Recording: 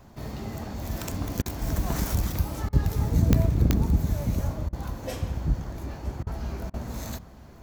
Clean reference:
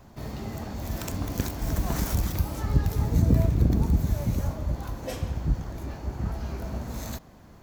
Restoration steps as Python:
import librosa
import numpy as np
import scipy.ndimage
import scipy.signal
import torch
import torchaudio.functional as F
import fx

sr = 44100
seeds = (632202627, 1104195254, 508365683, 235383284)

y = fx.fix_declick_ar(x, sr, threshold=10.0)
y = fx.fix_interpolate(y, sr, at_s=(1.42, 2.69, 4.69, 6.23, 6.7), length_ms=37.0)
y = fx.fix_echo_inverse(y, sr, delay_ms=960, level_db=-17.5)